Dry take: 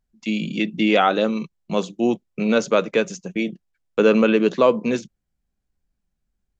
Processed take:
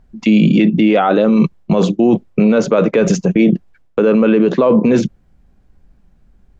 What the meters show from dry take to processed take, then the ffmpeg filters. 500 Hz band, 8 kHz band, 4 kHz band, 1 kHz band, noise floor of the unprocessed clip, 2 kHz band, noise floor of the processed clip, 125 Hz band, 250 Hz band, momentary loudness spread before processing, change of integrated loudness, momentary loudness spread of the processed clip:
+5.5 dB, no reading, +0.5 dB, +3.0 dB, -78 dBFS, +1.5 dB, -53 dBFS, +14.5 dB, +10.0 dB, 10 LU, +7.5 dB, 5 LU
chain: -af "highshelf=f=6600:g=-8,areverse,acompressor=threshold=0.0631:ratio=10,areverse,highshelf=f=2100:g=-12,alimiter=level_in=26.6:limit=0.891:release=50:level=0:latency=1,volume=0.708"

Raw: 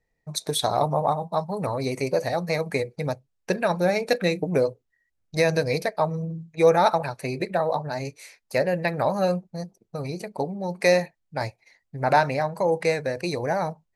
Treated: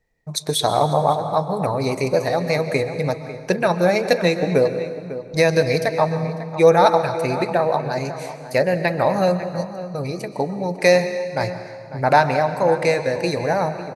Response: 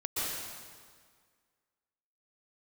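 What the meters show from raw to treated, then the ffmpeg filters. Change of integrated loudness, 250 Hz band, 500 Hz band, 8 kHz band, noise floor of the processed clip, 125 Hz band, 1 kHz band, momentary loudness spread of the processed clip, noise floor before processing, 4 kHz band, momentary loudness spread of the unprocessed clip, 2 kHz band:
+5.0 dB, +5.0 dB, +5.5 dB, +4.0 dB, -36 dBFS, +5.0 dB, +5.0 dB, 11 LU, -76 dBFS, +5.0 dB, 12 LU, +5.0 dB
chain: -filter_complex "[0:a]asplit=2[s0][s1];[s1]adelay=548.1,volume=0.224,highshelf=f=4000:g=-12.3[s2];[s0][s2]amix=inputs=2:normalize=0,asplit=2[s3][s4];[1:a]atrim=start_sample=2205,lowpass=9000[s5];[s4][s5]afir=irnorm=-1:irlink=0,volume=0.178[s6];[s3][s6]amix=inputs=2:normalize=0,volume=1.5"

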